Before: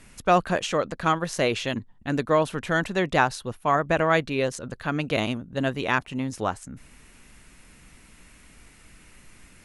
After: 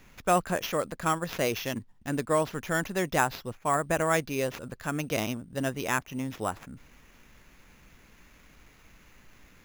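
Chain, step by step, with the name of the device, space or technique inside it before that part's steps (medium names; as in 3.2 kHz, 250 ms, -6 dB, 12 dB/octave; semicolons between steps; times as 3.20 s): early companding sampler (sample-rate reducer 8.8 kHz, jitter 0%; companded quantiser 8-bit); trim -4.5 dB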